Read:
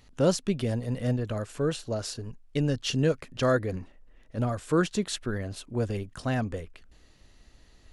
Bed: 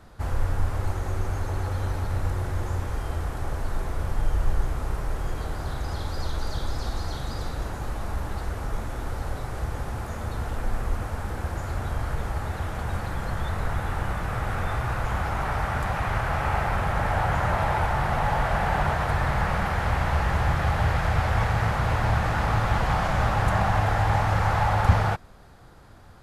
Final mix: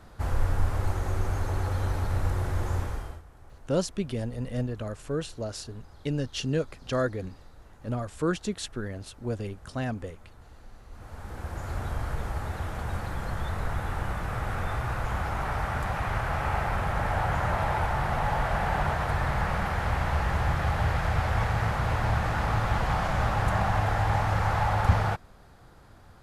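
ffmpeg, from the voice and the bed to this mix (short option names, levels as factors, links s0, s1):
-filter_complex "[0:a]adelay=3500,volume=0.708[s0];[1:a]volume=7.94,afade=t=out:st=2.79:d=0.43:silence=0.0891251,afade=t=in:st=10.89:d=0.87:silence=0.11885[s1];[s0][s1]amix=inputs=2:normalize=0"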